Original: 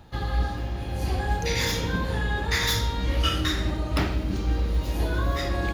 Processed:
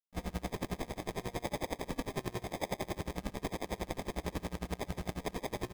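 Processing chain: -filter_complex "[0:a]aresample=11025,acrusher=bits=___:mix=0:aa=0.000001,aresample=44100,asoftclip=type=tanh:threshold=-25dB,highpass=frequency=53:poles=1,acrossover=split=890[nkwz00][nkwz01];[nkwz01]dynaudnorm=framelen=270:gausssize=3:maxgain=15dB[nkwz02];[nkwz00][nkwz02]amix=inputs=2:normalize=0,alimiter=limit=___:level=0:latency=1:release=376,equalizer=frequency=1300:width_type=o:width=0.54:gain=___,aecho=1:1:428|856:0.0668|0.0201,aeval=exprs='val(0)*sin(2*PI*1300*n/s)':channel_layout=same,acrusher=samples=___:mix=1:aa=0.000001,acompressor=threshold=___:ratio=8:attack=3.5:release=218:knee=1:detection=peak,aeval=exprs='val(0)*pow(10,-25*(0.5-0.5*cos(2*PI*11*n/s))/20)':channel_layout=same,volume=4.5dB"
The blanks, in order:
5, -10dB, -4, 31, -32dB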